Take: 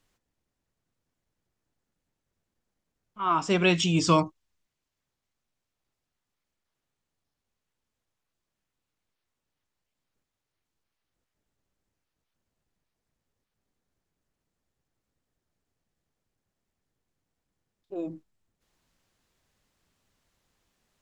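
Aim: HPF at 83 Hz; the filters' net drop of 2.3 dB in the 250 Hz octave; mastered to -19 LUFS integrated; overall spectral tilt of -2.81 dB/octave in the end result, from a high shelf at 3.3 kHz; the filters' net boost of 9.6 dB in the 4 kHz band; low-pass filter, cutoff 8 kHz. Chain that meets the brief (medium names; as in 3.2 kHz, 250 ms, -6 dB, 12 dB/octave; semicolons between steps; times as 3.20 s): high-pass 83 Hz; low-pass 8 kHz; peaking EQ 250 Hz -4 dB; treble shelf 3.3 kHz +8 dB; peaking EQ 4 kHz +7.5 dB; trim +2 dB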